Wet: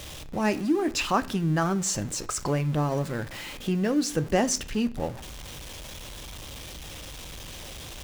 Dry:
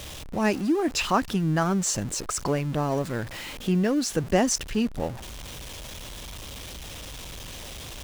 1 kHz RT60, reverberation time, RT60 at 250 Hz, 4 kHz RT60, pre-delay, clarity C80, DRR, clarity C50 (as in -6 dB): 0.50 s, 0.50 s, 0.65 s, 0.50 s, 3 ms, 24.5 dB, 10.5 dB, 19.0 dB